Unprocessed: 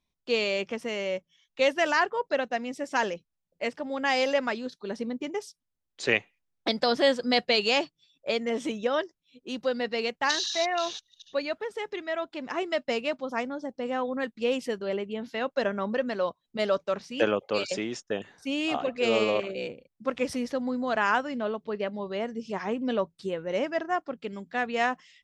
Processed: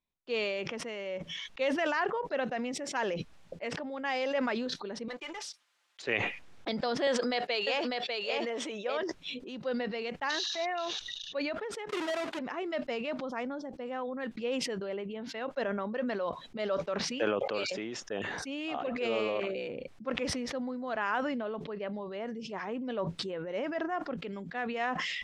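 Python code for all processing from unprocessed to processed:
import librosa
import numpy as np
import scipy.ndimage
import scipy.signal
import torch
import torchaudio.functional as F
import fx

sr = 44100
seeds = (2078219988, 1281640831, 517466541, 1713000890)

y = fx.chain(x, sr, fx.highpass(hz=1100.0, slope=12),
    fx.leveller(passes=3),
    fx.comb(ms=5.8, depth=0.32), at=(5.08, 6.02))
y = fx.chain(y, sr, fx.highpass(hz=380.0, slope=12),
    fx.echo_single(ms=597, db=-3.5), at=(7.07, 9.03))
y = fx.chain(y, sr, fx.halfwave_hold(),
    fx.highpass(hz=320.0, slope=6),
    fx.band_squash(depth_pct=100), at=(11.89, 12.39))
y = scipy.signal.sosfilt(scipy.signal.butter(2, 7700.0, 'lowpass', fs=sr, output='sos'), y)
y = fx.bass_treble(y, sr, bass_db=-4, treble_db=-8)
y = fx.sustainer(y, sr, db_per_s=20.0)
y = y * librosa.db_to_amplitude(-7.0)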